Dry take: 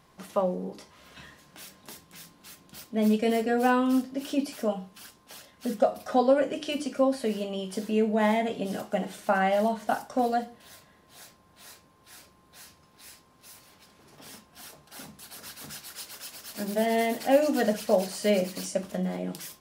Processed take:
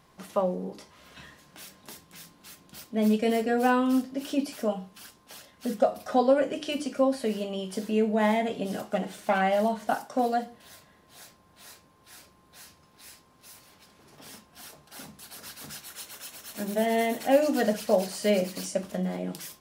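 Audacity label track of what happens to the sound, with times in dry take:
8.840000	9.410000	self-modulated delay depth 0.12 ms
9.930000	10.460000	HPF 140 Hz
15.800000	17.320000	notch 4800 Hz, Q 6.7

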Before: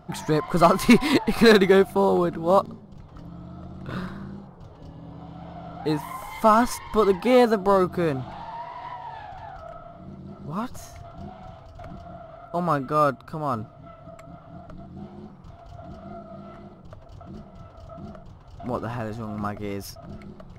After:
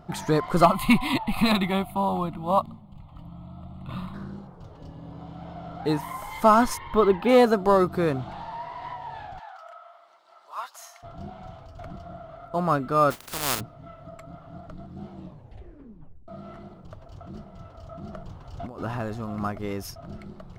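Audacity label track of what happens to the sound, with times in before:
0.650000	4.140000	fixed phaser centre 1600 Hz, stages 6
6.770000	7.290000	band shelf 7600 Hz -13.5 dB
9.390000	11.030000	HPF 790 Hz 24 dB/oct
13.100000	13.590000	spectral contrast lowered exponent 0.23
15.100000	15.100000	tape stop 1.18 s
18.130000	18.830000	negative-ratio compressor -36 dBFS

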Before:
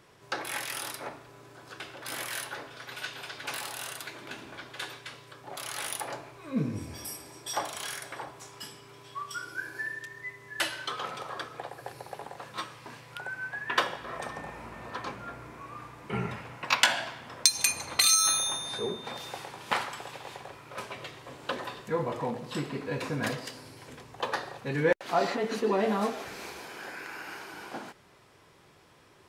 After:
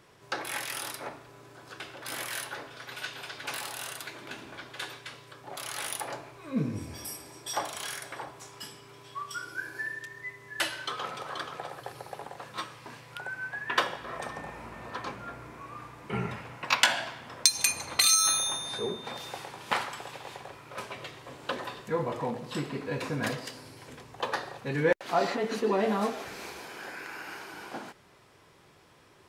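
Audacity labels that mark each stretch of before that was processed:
10.780000	11.320000	echo throw 0.48 s, feedback 25%, level -7.5 dB

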